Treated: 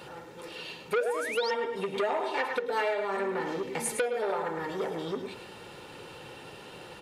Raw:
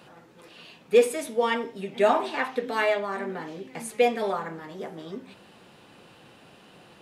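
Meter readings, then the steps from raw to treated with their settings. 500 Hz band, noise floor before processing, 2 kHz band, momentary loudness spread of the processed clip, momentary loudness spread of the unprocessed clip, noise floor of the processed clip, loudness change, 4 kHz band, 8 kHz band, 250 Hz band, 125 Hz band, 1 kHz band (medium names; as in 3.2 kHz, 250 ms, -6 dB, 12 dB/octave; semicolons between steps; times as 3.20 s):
-5.0 dB, -54 dBFS, -2.5 dB, 16 LU, 17 LU, -47 dBFS, -5.0 dB, -1.5 dB, +1.0 dB, -4.5 dB, -1.0 dB, -3.5 dB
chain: comb 2.2 ms, depth 49%; feedback delay 106 ms, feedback 25%, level -8.5 dB; dynamic bell 590 Hz, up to +7 dB, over -33 dBFS, Q 1.4; compression 6:1, threshold -31 dBFS, peak gain reduction 23.5 dB; painted sound rise, 0.95–1.51 s, 410–5600 Hz -41 dBFS; transformer saturation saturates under 1.6 kHz; trim +5.5 dB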